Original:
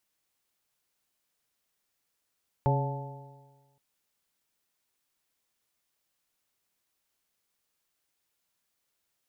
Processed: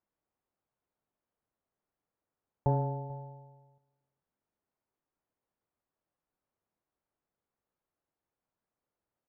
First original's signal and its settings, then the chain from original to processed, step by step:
stretched partials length 1.12 s, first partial 136 Hz, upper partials -13/-9.5/-8/-12.5/-5 dB, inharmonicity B 0.004, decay 1.38 s, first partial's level -22 dB
one diode to ground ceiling -16.5 dBFS; LPF 1000 Hz 12 dB/oct; echo 0.44 s -22.5 dB

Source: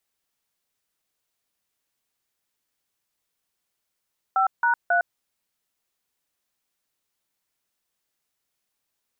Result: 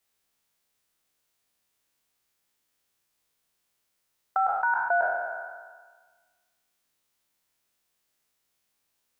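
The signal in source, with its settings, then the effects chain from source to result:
DTMF "5#3", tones 0.108 s, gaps 0.163 s, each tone -20 dBFS
spectral trails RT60 1.47 s; dynamic EQ 1200 Hz, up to -6 dB, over -34 dBFS, Q 1.6

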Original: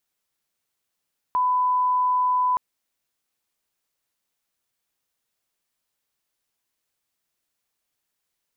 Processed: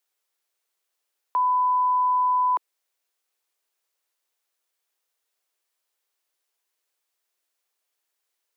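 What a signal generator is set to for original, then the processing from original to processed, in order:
line-up tone -18 dBFS 1.22 s
steep high-pass 340 Hz

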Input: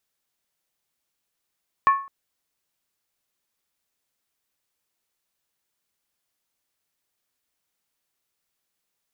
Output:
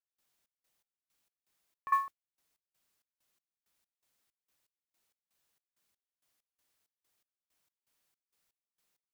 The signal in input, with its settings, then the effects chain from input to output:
skin hit length 0.21 s, lowest mode 1100 Hz, decay 0.40 s, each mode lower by 11.5 dB, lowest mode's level -10.5 dB
step gate "..xxx..xx...xx" 164 bpm -24 dB; modulation noise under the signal 29 dB

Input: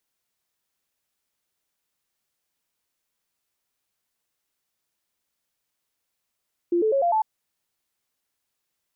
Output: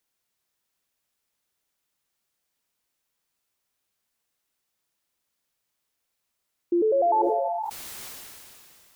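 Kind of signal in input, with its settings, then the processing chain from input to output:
stepped sine 346 Hz up, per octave 3, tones 5, 0.10 s, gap 0.00 s -18 dBFS
non-linear reverb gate 0.49 s rising, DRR 9.5 dB; sustainer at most 22 dB/s

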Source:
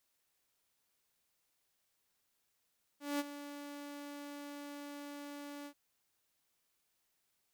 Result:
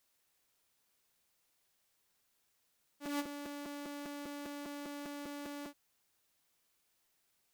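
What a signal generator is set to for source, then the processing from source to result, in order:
ADSR saw 288 Hz, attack 0.196 s, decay 30 ms, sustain -13 dB, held 2.66 s, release 75 ms -29.5 dBFS
in parallel at -9 dB: wrapped overs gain 38 dB; on the sum: crackling interface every 0.20 s, samples 256, repeat

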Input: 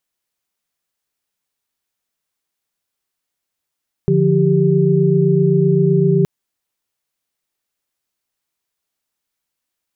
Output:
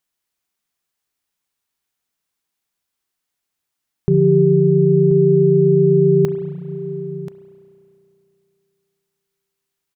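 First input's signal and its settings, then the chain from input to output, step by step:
chord D3/F3/G4 sine, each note -15 dBFS 2.17 s
bell 550 Hz -4 dB 0.35 oct; echo 1.033 s -14.5 dB; spring tank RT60 2.8 s, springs 33 ms, chirp 60 ms, DRR 9.5 dB

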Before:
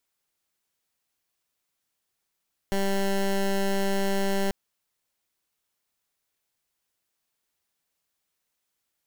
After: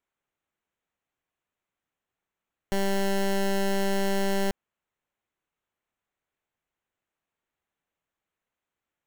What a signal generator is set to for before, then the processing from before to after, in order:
pulse 196 Hz, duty 16% -24.5 dBFS 1.79 s
Wiener smoothing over 9 samples

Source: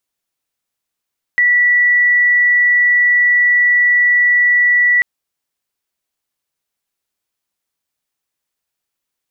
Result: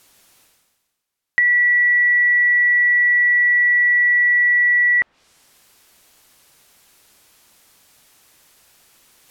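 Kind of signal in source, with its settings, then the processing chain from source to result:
tone sine 1950 Hz -8.5 dBFS 3.64 s
reverse; upward compressor, threshold -31 dBFS; reverse; treble ducked by the level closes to 1900 Hz, closed at -14.5 dBFS

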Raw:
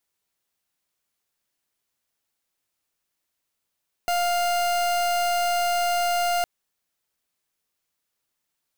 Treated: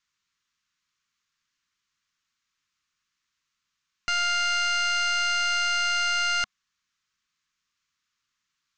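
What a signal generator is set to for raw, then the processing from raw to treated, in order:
pulse 701 Hz, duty 39% -23 dBFS 2.36 s
EQ curve 200 Hz 0 dB, 740 Hz -19 dB, 1100 Hz +6 dB, 6700 Hz +3 dB, 11000 Hz -29 dB

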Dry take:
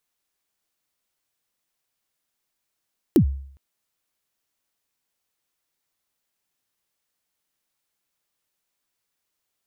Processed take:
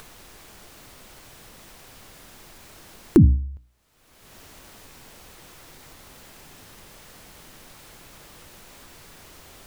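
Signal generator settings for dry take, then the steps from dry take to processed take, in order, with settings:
kick drum length 0.41 s, from 390 Hz, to 68 Hz, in 89 ms, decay 0.60 s, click on, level -9 dB
tilt -2.5 dB/oct; notches 60/120/180/240/300 Hz; upward compressor, threshold -18 dBFS

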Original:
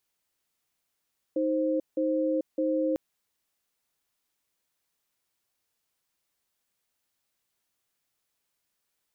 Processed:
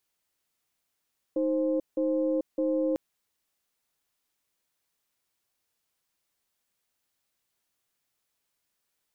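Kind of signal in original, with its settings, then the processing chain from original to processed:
cadence 313 Hz, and 525 Hz, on 0.44 s, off 0.17 s, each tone -26.5 dBFS 1.60 s
tracing distortion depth 0.16 ms

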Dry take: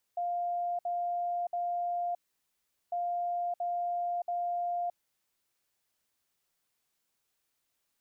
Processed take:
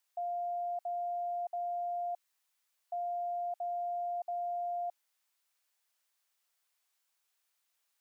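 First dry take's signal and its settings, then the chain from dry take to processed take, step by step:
beep pattern sine 701 Hz, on 0.62 s, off 0.06 s, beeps 3, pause 0.77 s, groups 2, -29.5 dBFS
HPF 720 Hz 12 dB/oct

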